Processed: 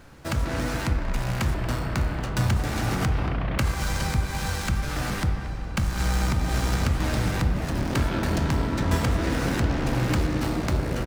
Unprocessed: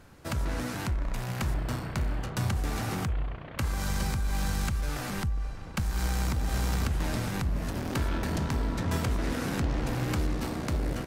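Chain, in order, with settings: median filter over 3 samples; de-hum 48.82 Hz, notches 28; speakerphone echo 230 ms, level -11 dB; on a send at -8.5 dB: reverberation RT60 3.0 s, pre-delay 3 ms; 3.01–3.71 s: on the sum: level flattener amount 50%; trim +5.5 dB

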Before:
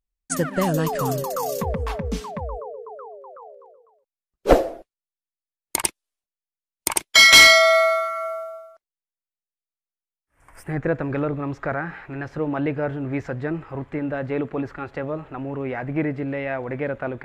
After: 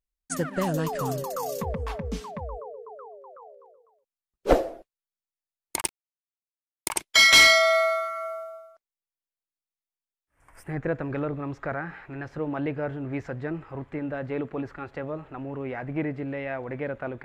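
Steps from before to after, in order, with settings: 5.81–6.92 s: small samples zeroed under -31 dBFS; loudspeaker Doppler distortion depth 0.13 ms; trim -5 dB

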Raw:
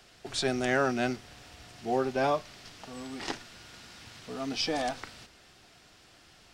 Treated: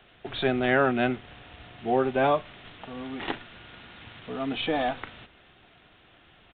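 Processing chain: in parallel at -10 dB: bit crusher 8-bit; on the sum: resampled via 8 kHz; trim +2 dB

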